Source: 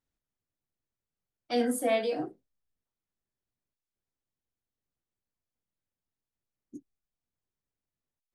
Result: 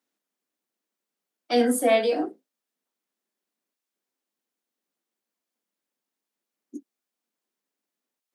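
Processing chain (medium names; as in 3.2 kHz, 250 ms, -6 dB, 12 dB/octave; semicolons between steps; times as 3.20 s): steep high-pass 210 Hz; trim +7 dB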